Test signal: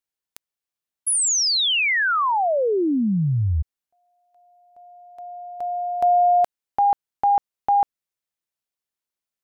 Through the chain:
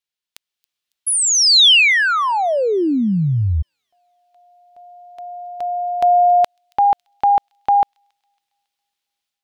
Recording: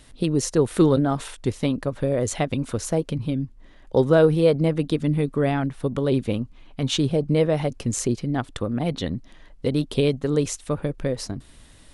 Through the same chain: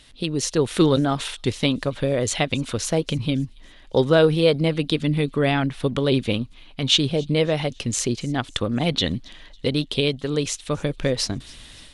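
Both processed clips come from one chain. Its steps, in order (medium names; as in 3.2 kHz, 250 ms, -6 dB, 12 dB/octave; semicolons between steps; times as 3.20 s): peaking EQ 3.4 kHz +11 dB 1.7 oct; level rider gain up to 8 dB; feedback echo behind a high-pass 276 ms, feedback 47%, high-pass 4 kHz, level -21 dB; trim -4.5 dB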